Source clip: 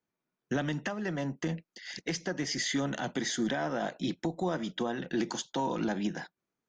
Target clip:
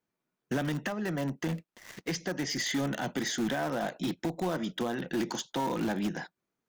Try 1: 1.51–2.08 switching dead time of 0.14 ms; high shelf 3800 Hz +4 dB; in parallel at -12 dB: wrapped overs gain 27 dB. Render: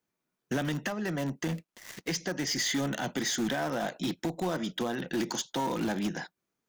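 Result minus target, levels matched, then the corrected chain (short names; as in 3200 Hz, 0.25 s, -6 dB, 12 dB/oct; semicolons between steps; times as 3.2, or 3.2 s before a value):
8000 Hz band +3.0 dB
1.51–2.08 switching dead time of 0.14 ms; high shelf 3800 Hz -2.5 dB; in parallel at -12 dB: wrapped overs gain 27 dB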